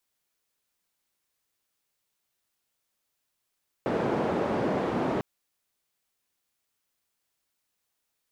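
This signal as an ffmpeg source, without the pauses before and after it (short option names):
-f lavfi -i "anoisesrc=c=white:d=1.35:r=44100:seed=1,highpass=f=160,lowpass=f=560,volume=-5.8dB"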